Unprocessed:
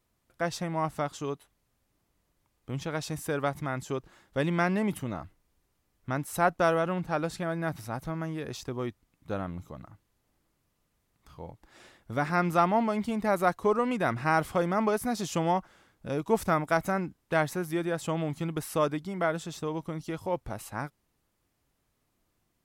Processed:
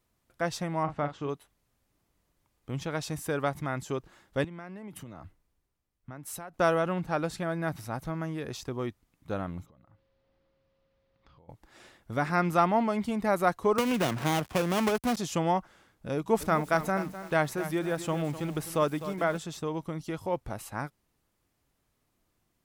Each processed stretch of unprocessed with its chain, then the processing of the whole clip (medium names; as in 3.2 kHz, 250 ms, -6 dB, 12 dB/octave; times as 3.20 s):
0.83–1.29 s: low-pass 2.6 kHz + doubling 41 ms -9.5 dB
4.44–6.54 s: compression 16:1, threshold -38 dBFS + three bands expanded up and down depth 40%
9.65–11.48 s: inverse Chebyshev low-pass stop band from 12 kHz, stop band 60 dB + compression 20:1, threshold -55 dBFS + whistle 540 Hz -73 dBFS
13.78–15.17 s: dead-time distortion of 0.29 ms + high-pass 42 Hz + three bands compressed up and down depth 100%
16.15–19.38 s: hum notches 60/120/180 Hz + bit-crushed delay 254 ms, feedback 35%, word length 7-bit, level -11.5 dB
whole clip: none